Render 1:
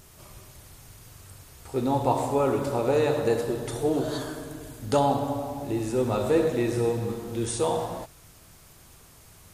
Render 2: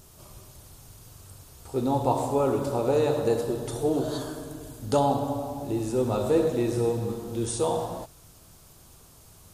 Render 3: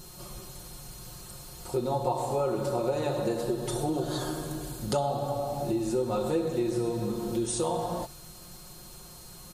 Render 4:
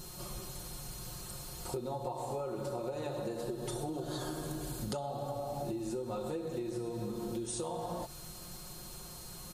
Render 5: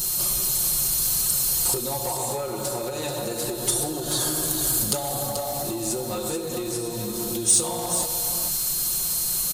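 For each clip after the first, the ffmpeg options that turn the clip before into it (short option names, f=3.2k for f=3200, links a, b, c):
-af "equalizer=f=2k:t=o:w=0.92:g=-7.5"
-af "aecho=1:1:5.6:0.87,acompressor=threshold=-31dB:ratio=3,aeval=exprs='val(0)+0.00126*sin(2*PI*4200*n/s)':c=same,volume=3dB"
-af "acompressor=threshold=-35dB:ratio=6"
-af "asoftclip=type=tanh:threshold=-29dB,crystalizer=i=5.5:c=0,aecho=1:1:434:0.398,volume=7.5dB"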